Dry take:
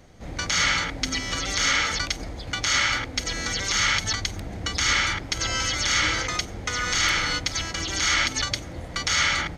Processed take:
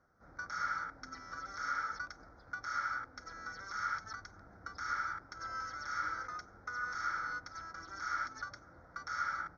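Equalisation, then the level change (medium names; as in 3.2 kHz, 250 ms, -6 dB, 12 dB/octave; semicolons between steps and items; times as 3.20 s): two resonant band-passes 2.8 kHz, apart 2 oct; distance through air 160 m; tilt EQ -4.5 dB/octave; -1.0 dB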